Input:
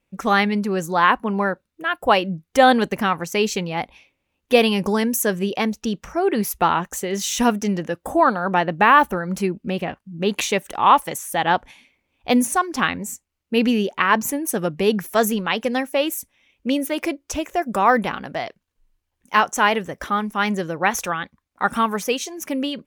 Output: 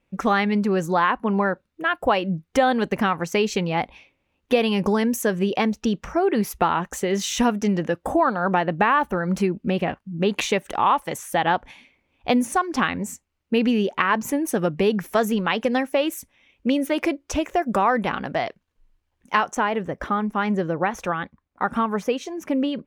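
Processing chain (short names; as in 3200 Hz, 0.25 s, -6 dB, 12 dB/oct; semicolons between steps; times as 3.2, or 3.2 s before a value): compressor 3:1, threshold -21 dBFS, peak gain reduction 10 dB; LPF 3400 Hz 6 dB/oct, from 19.55 s 1200 Hz; gain +3.5 dB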